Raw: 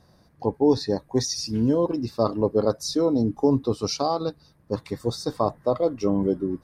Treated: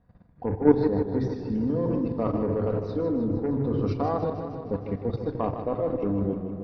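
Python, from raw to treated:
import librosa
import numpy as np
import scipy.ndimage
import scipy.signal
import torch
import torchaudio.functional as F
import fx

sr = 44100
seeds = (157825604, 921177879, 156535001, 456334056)

p1 = fx.fade_out_tail(x, sr, length_s=0.57)
p2 = fx.low_shelf(p1, sr, hz=130.0, db=11.0)
p3 = fx.cheby_harmonics(p2, sr, harmonics=(2, 3, 4, 7), levels_db=(-15, -36, -20, -41), full_scale_db=-7.0)
p4 = scipy.signal.sosfilt(scipy.signal.butter(4, 2700.0, 'lowpass', fs=sr, output='sos'), p3)
p5 = p4 + fx.echo_single(p4, sr, ms=970, db=-20.5, dry=0)
p6 = fx.room_shoebox(p5, sr, seeds[0], volume_m3=2900.0, walls='furnished', distance_m=1.8)
p7 = fx.level_steps(p6, sr, step_db=13)
y = fx.echo_warbled(p7, sr, ms=155, feedback_pct=67, rate_hz=2.8, cents=80, wet_db=-9)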